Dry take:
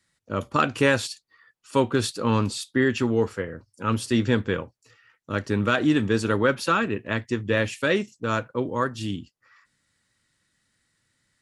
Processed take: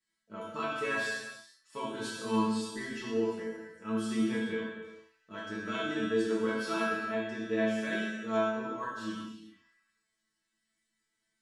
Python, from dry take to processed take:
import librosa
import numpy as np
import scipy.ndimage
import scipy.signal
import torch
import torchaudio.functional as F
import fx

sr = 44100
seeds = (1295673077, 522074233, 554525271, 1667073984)

y = fx.peak_eq(x, sr, hz=68.0, db=-3.0, octaves=1.6)
y = fx.resonator_bank(y, sr, root=57, chord='fifth', decay_s=0.35)
y = fx.rev_gated(y, sr, seeds[0], gate_ms=480, shape='falling', drr_db=-3.0)
y = y * 10.0 ** (2.0 / 20.0)